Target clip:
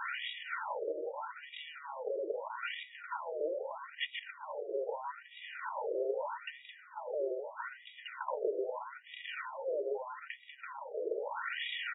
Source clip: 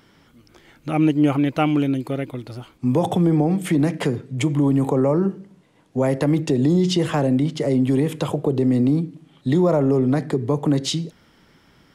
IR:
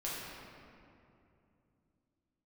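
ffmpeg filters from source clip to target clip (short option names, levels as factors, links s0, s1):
-filter_complex "[0:a]aeval=exprs='val(0)+0.5*0.0376*sgn(val(0))':c=same,acrossover=split=250|3000[s0][s1][s2];[s1]acompressor=threshold=0.0398:ratio=10[s3];[s0][s3][s2]amix=inputs=3:normalize=0,highshelf=f=2100:g=-11.5,acompressor=threshold=0.0447:ratio=8,aresample=16000,asoftclip=type=tanh:threshold=0.0168,aresample=44100,bass=f=250:g=-9,treble=f=4000:g=13,aecho=1:1:2.1:0.92,aecho=1:1:482:0.501,afftfilt=real='re*between(b*sr/1024,460*pow(2700/460,0.5+0.5*sin(2*PI*0.79*pts/sr))/1.41,460*pow(2700/460,0.5+0.5*sin(2*PI*0.79*pts/sr))*1.41)':imag='im*between(b*sr/1024,460*pow(2700/460,0.5+0.5*sin(2*PI*0.79*pts/sr))/1.41,460*pow(2700/460,0.5+0.5*sin(2*PI*0.79*pts/sr))*1.41)':win_size=1024:overlap=0.75,volume=2.37"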